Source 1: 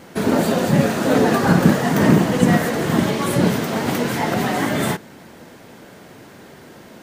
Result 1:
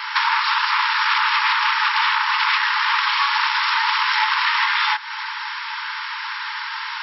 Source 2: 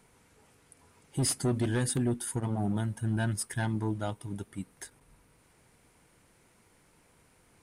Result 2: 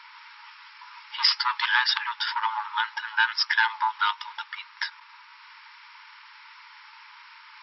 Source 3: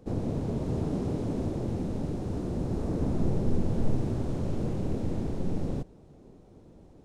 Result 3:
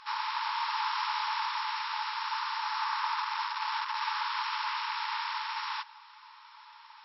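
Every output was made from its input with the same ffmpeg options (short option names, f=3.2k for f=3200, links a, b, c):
-af "aeval=exprs='0.891*sin(PI/2*7.08*val(0)/0.891)':c=same,afftfilt=real='re*between(b*sr/4096,840,5600)':imag='im*between(b*sr/4096,840,5600)':win_size=4096:overlap=0.75,acompressor=threshold=-17dB:ratio=5"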